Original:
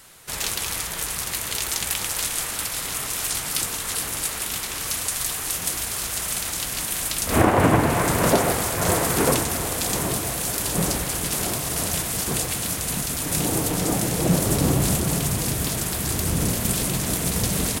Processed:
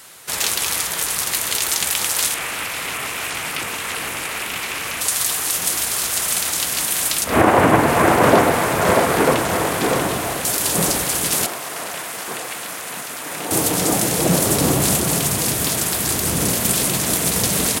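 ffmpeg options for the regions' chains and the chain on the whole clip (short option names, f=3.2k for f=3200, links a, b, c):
-filter_complex "[0:a]asettb=1/sr,asplit=3[a][b][c];[a]atrim=end=2.344[d];[b]atrim=start=2.34:end=5.01,asetpts=PTS-STARTPTS,afade=t=in:d=0.004:c=qsin,afade=t=out:st=2.666:d=0.004:c=qsin,acrossover=split=2500[e][f];[f]acompressor=threshold=-34dB:ratio=4:attack=1:release=60[g];[e][g]amix=inputs=2:normalize=0,equalizer=f=2.5k:w=1.9:g=7[h];[c]atrim=start=5.006[i];[d][h]acrossfade=d=0.004:c1=hsin:c2=qsin[j];[j][i]acrossfade=d=0.004:c1=qsin:c2=hsin,asettb=1/sr,asplit=3[k][l][m];[k]atrim=end=7.244[n];[l]atrim=start=7.24:end=10.45,asetpts=PTS-STARTPTS,afade=t=in:d=0.004:c=qsin,afade=t=out:st=3.206:d=0.004:c=qsin,acrossover=split=3200[o][p];[p]acompressor=threshold=-34dB:ratio=4:attack=1:release=60[q];[o][q]amix=inputs=2:normalize=0,aecho=1:1:638:0.596,atrim=end_sample=141561[r];[m]atrim=start=10.446[s];[n][r]acrossfade=d=0.004:c1=hsin:c2=qsin[t];[t][s]acrossfade=d=0.004:c1=qsin:c2=hsin,asettb=1/sr,asplit=3[u][v][w];[u]atrim=end=11.464[x];[v]atrim=start=11.46:end=13.51,asetpts=PTS-STARTPTS,afade=t=in:d=0.004:c=qsin,afade=t=out:st=2.046:d=0.004:c=qsin,highpass=f=810:p=1,acrossover=split=2500[y][z];[z]acompressor=threshold=-36dB:ratio=4:attack=1:release=60[aa];[y][aa]amix=inputs=2:normalize=0[ab];[w]atrim=start=13.506[ac];[x][ab]acrossfade=d=0.004:c1=hsin:c2=qsin[ad];[ad][ac]acrossfade=d=0.004:c1=qsin:c2=hsin,highpass=54,lowshelf=f=180:g=-10.5,alimiter=level_in=7.5dB:limit=-1dB:release=50:level=0:latency=1,volume=-1dB"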